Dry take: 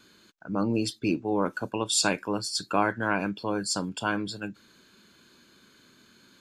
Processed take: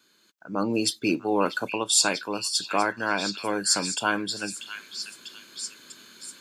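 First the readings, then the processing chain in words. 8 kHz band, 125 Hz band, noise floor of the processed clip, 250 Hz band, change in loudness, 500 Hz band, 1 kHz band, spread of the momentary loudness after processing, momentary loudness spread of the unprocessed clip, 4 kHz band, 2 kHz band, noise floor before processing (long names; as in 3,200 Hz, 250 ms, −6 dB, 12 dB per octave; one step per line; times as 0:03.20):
+6.5 dB, −4.5 dB, −63 dBFS, −0.5 dB, +2.0 dB, +1.5 dB, +2.0 dB, 16 LU, 9 LU, +5.5 dB, +3.5 dB, −60 dBFS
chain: high-pass filter 340 Hz 6 dB per octave
high-shelf EQ 5,700 Hz +6.5 dB
automatic gain control gain up to 14 dB
on a send: echo through a band-pass that steps 643 ms, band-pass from 2,500 Hz, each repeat 0.7 octaves, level −5 dB
on the sum: level −7 dB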